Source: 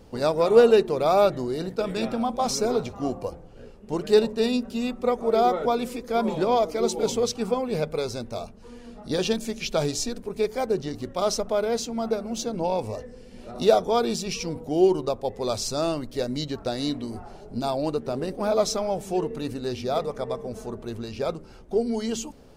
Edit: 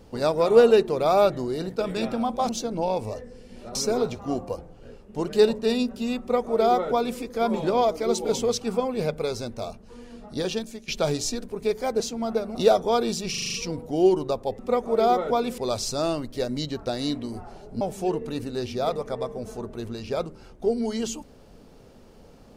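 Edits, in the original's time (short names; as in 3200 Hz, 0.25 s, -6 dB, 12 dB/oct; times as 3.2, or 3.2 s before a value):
4.94–5.93 copy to 15.37
8.98–9.62 fade out, to -12.5 dB
10.74–11.76 cut
12.31–13.57 move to 2.49
14.32 stutter 0.04 s, 7 plays
17.6–18.9 cut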